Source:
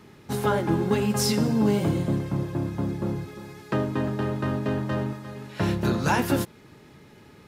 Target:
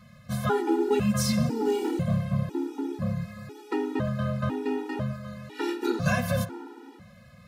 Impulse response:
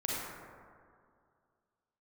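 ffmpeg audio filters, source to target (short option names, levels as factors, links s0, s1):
-filter_complex "[0:a]asettb=1/sr,asplit=3[s0][s1][s2];[s0]atrim=end=1.784[s3];[s1]atrim=start=1.78:end=2.39,asetpts=PTS-STARTPTS,afade=t=in:d=0.004:c=qsin,afade=t=out:st=0.606:d=0.004:c=qsin,aeval=exprs='0.119*(abs(mod(val(0)/0.119+3,4)-2)-1)':c=same[s4];[s2]atrim=start=2.386[s5];[s3][s4]acrossfade=d=0.004:c1=hsin:c2=qsin[s6];[s6][s5]acrossfade=d=0.004:c1=qsin:c2=hsin,asplit=2[s7][s8];[1:a]atrim=start_sample=2205,lowpass=5900[s9];[s8][s9]afir=irnorm=-1:irlink=0,volume=0.141[s10];[s7][s10]amix=inputs=2:normalize=0,afftfilt=real='re*gt(sin(2*PI*1*pts/sr)*(1-2*mod(floor(b*sr/1024/250),2)),0)':imag='im*gt(sin(2*PI*1*pts/sr)*(1-2*mod(floor(b*sr/1024/250),2)),0)':win_size=1024:overlap=0.75"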